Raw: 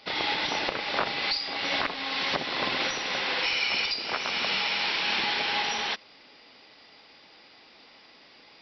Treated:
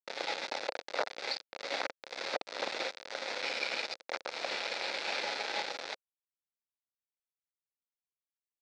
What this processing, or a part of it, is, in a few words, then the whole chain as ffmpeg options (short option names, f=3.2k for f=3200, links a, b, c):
hand-held game console: -af "acrusher=bits=3:mix=0:aa=0.000001,highpass=430,equalizer=f=530:t=q:w=4:g=7,equalizer=f=1.1k:t=q:w=4:g=-8,equalizer=f=1.8k:t=q:w=4:g=-3,equalizer=f=3k:t=q:w=4:g=-10,lowpass=f=4.5k:w=0.5412,lowpass=f=4.5k:w=1.3066,volume=-3.5dB"